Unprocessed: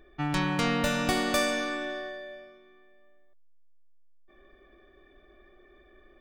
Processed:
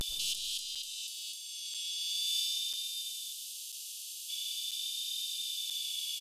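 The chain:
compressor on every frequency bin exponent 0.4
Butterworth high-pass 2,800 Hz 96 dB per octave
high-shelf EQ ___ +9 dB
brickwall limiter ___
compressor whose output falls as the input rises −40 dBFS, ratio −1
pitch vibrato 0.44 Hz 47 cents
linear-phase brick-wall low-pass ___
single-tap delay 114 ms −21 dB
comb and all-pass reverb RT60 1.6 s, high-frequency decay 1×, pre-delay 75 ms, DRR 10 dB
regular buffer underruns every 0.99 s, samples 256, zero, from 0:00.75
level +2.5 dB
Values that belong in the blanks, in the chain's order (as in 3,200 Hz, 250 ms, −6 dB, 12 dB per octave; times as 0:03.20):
4,700 Hz, −15.5 dBFS, 14,000 Hz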